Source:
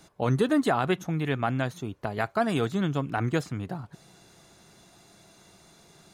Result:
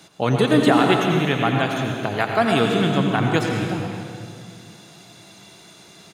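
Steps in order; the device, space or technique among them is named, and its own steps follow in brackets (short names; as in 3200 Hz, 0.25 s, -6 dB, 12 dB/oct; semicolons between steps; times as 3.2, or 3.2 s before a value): PA in a hall (HPF 110 Hz; bell 3100 Hz +6 dB 1.1 oct; echo 87 ms -11 dB; reverb RT60 2.3 s, pre-delay 99 ms, DRR 2 dB); gain +5.5 dB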